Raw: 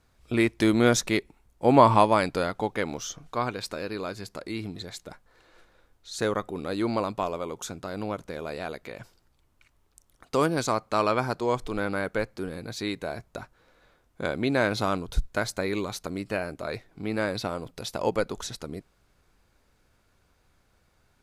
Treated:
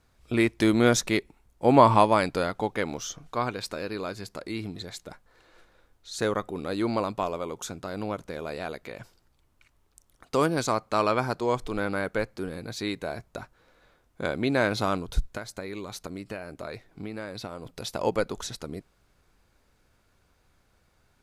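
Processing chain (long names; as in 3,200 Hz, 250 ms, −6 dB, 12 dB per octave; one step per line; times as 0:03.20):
0:15.31–0:17.65: downward compressor 6 to 1, threshold −33 dBFS, peak gain reduction 11 dB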